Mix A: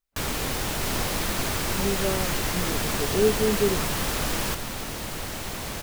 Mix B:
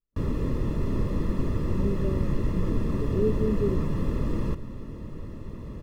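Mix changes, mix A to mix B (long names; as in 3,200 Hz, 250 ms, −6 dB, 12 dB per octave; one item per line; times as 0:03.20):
first sound +6.0 dB
master: add moving average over 58 samples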